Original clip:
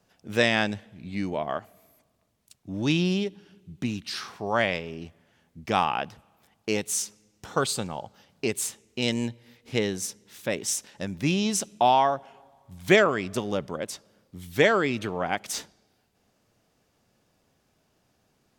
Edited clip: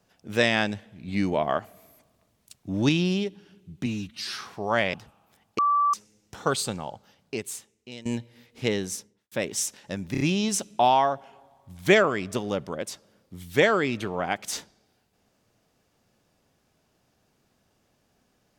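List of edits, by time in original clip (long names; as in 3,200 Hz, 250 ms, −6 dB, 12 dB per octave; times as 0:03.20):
0:01.08–0:02.89: clip gain +4.5 dB
0:03.86–0:04.21: time-stretch 1.5×
0:04.76–0:06.04: remove
0:06.69–0:07.04: beep over 1,160 Hz −18.5 dBFS
0:07.88–0:09.16: fade out, to −20 dB
0:09.99–0:10.42: fade out and dull
0:11.22: stutter 0.03 s, 4 plays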